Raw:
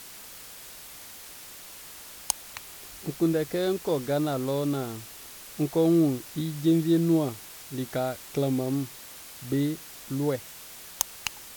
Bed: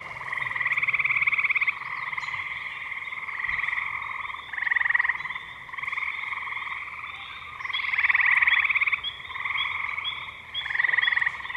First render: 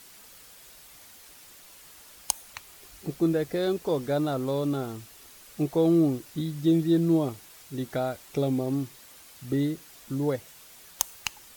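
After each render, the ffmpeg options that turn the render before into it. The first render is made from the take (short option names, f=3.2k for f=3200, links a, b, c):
-af "afftdn=nr=7:nf=-45"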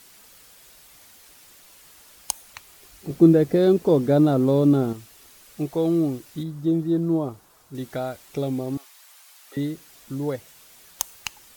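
-filter_complex "[0:a]asettb=1/sr,asplit=3[a][b][c];[a]atrim=end=3.104[d];[b]atrim=start=3.1:end=4.93,asetpts=PTS-STARTPTS,afade=t=in:d=0.004:c=qsin,afade=t=out:st=1.826:d=0.004:c=qsin,equalizer=f=220:w=0.4:g=12[e];[c]atrim=start=4.926[f];[d][e]acrossfade=d=0.004:c1=hsin:c2=qsin[g];[g][f]acrossfade=d=0.004:c1=qsin:c2=hsin,asettb=1/sr,asplit=3[h][i][j];[h]atrim=end=6.434[k];[i]atrim=start=6.43:end=7.75,asetpts=PTS-STARTPTS,afade=t=in:d=0.004:c=qsin,afade=t=out:st=1.316:d=0.004:c=qsin,highshelf=f=1.6k:t=q:w=1.5:g=-7.5[l];[j]atrim=start=7.746[m];[k][l]acrossfade=d=0.004:c1=hsin:c2=qsin[n];[n][m]acrossfade=d=0.004:c1=qsin:c2=hsin,asettb=1/sr,asplit=3[o][p][q];[o]atrim=end=8.774[r];[p]atrim=start=8.77:end=9.57,asetpts=PTS-STARTPTS,afade=t=in:d=0.004:c=qsin,afade=t=out:st=0.796:d=0.004:c=qsin,highpass=f=690:w=0.5412,highpass=f=690:w=1.3066[s];[q]atrim=start=9.566[t];[r][s]acrossfade=d=0.004:c1=hsin:c2=qsin[u];[u][t]acrossfade=d=0.004:c1=qsin:c2=hsin"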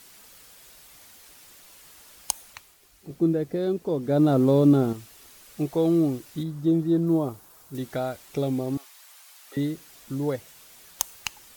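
-filter_complex "[0:a]asettb=1/sr,asplit=3[a][b][c];[a]atrim=end=7.074[d];[b]atrim=start=7.07:end=7.78,asetpts=PTS-STARTPTS,afade=t=in:d=0.004:c=qsin,afade=t=out:st=0.706:d=0.004:c=qsin,highshelf=f=9.4k:g=8.5[e];[c]atrim=start=7.776[f];[d][e]acrossfade=d=0.004:c1=hsin:c2=qsin[g];[g][f]acrossfade=d=0.004:c1=qsin:c2=hsin,asplit=3[h][i][j];[h]atrim=end=2.77,asetpts=PTS-STARTPTS,afade=t=out:st=2.43:d=0.34:silence=0.375837[k];[i]atrim=start=2.77:end=4.01,asetpts=PTS-STARTPTS,volume=-8.5dB[l];[j]atrim=start=4.01,asetpts=PTS-STARTPTS,afade=t=in:d=0.34:silence=0.375837[m];[k][l][m]concat=n=3:v=0:a=1"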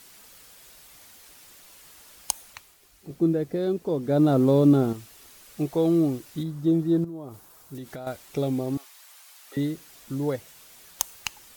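-filter_complex "[0:a]asettb=1/sr,asplit=3[a][b][c];[a]atrim=end=7.044[d];[b]atrim=start=7.04:end=8.07,asetpts=PTS-STARTPTS,afade=t=in:d=0.004:c=qsin,afade=t=out:st=1.026:d=0.004:c=qsin,acompressor=threshold=-34dB:ratio=8:attack=3.2:release=140:knee=1:detection=peak[e];[c]atrim=start=8.066[f];[d][e]acrossfade=d=0.004:c1=hsin:c2=qsin[g];[g][f]acrossfade=d=0.004:c1=qsin:c2=hsin"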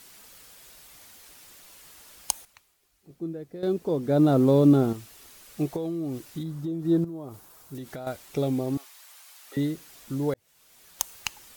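-filter_complex "[0:a]asettb=1/sr,asplit=3[a][b][c];[a]atrim=end=5.764[d];[b]atrim=start=5.76:end=6.85,asetpts=PTS-STARTPTS,afade=t=in:d=0.004:c=qsin,afade=t=out:st=1.086:d=0.004:c=qsin,acompressor=threshold=-28dB:ratio=6:attack=3.2:release=140:knee=1:detection=peak[e];[c]atrim=start=6.846[f];[d][e]acrossfade=d=0.004:c1=hsin:c2=qsin[g];[g][f]acrossfade=d=0.004:c1=qsin:c2=hsin,asplit=4[h][i][j][k];[h]atrim=end=2.452[l];[i]atrim=start=2.448:end=3.632,asetpts=PTS-STARTPTS,volume=-11.5dB[m];[j]atrim=start=3.628:end=10.34,asetpts=PTS-STARTPTS,afade=t=out:st=6.708:d=0.004:c=hsin[n];[k]atrim=start=10.34,asetpts=PTS-STARTPTS,afade=t=in:d=0.82[o];[l][m]acrossfade=d=0.004:c1=hsin:c2=hsin[p];[n][o]concat=n=2:v=0:a=1[q];[p][q]acrossfade=d=0.004:c1=hsin:c2=hsin"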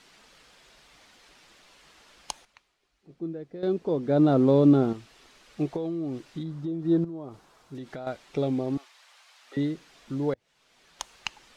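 -af "lowpass=4.4k,equalizer=f=86:t=o:w=0.8:g=-8.5"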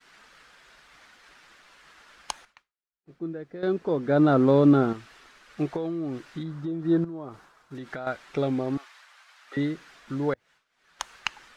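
-af "agate=range=-33dB:threshold=-53dB:ratio=3:detection=peak,equalizer=f=1.5k:w=1.2:g=10"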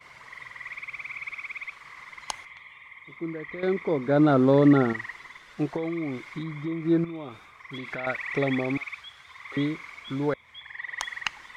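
-filter_complex "[1:a]volume=-13.5dB[a];[0:a][a]amix=inputs=2:normalize=0"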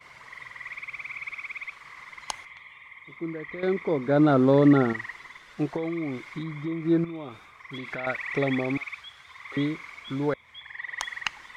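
-af anull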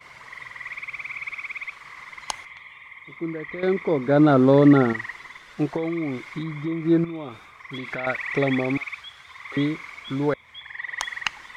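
-af "volume=3.5dB"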